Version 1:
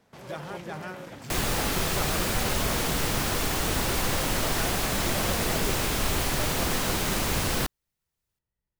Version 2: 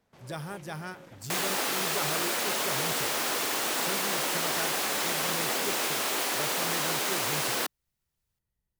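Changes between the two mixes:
speech: add tone controls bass +4 dB, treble +11 dB; first sound -9.0 dB; second sound: add Bessel high-pass 400 Hz, order 4

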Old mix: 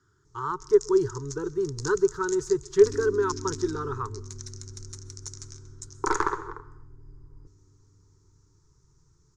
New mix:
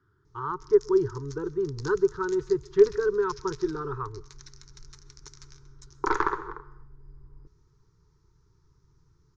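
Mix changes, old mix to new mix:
first sound: add treble shelf 2.5 kHz +10 dB; second sound: muted; master: add distance through air 280 m

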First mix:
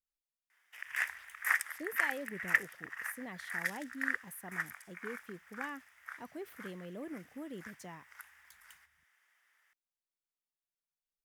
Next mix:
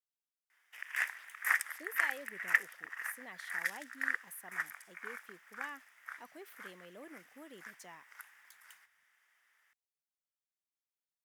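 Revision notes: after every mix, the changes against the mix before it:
speech: add high-pass 890 Hz 6 dB/octave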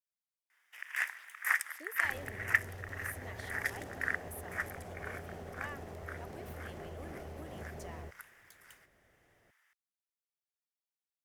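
second sound: unmuted

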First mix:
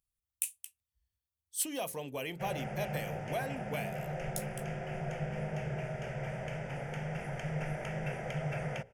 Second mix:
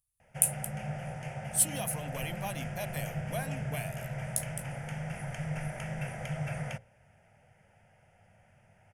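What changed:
background: entry -2.05 s; master: add fifteen-band graphic EQ 100 Hz +7 dB, 400 Hz -10 dB, 10 kHz +11 dB

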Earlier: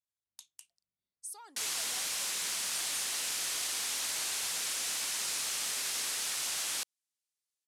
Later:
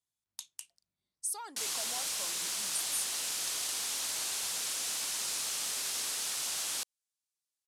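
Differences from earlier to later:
speech +8.0 dB; background: add peaking EQ 2 kHz -4 dB 1 oct

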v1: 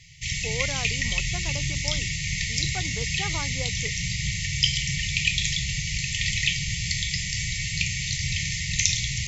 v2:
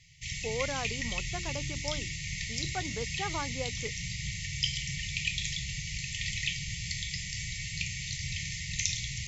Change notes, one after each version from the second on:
background -8.5 dB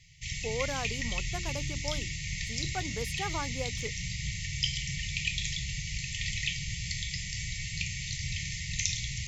speech: remove steep low-pass 5.8 kHz 36 dB/octave; master: add bass shelf 65 Hz +5.5 dB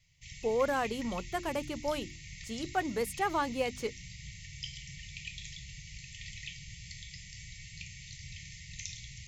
speech +5.5 dB; background -11.5 dB

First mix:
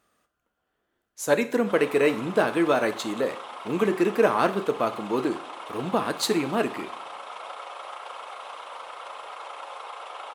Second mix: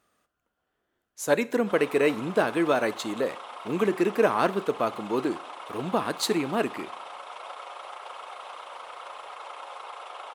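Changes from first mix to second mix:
speech: send -7.0 dB; background: send off

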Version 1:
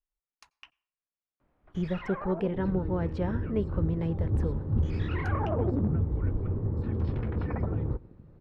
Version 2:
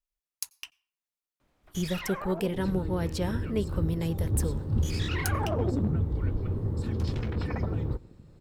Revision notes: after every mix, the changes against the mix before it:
master: remove low-pass 1.7 kHz 12 dB/octave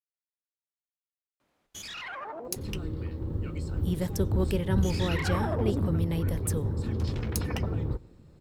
speech: entry +2.10 s; first sound: add high-pass 250 Hz 6 dB/octave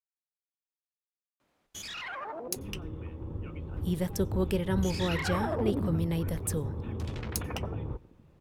second sound: add rippled Chebyshev low-pass 3.6 kHz, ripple 6 dB

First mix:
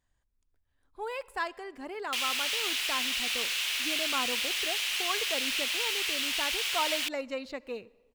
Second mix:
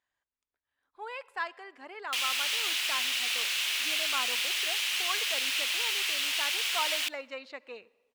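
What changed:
speech: add band-pass filter 1.8 kHz, Q 0.57; background: send on

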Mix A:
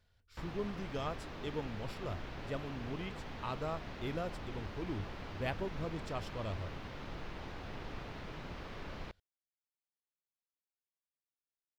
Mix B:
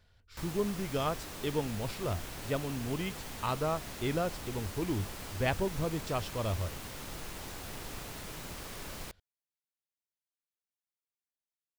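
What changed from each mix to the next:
speech +7.0 dB; background: remove distance through air 260 m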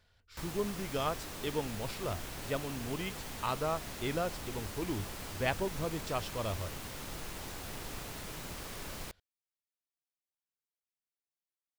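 speech: add bass shelf 350 Hz -5.5 dB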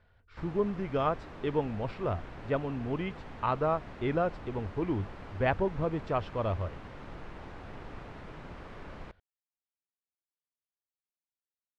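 speech +5.5 dB; master: add low-pass 1.8 kHz 12 dB/octave

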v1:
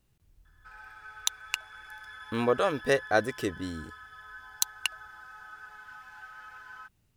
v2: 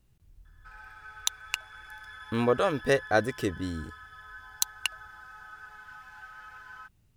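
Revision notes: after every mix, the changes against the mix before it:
speech: add bass shelf 180 Hz +6.5 dB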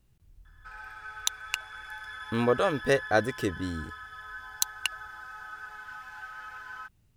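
background +4.5 dB

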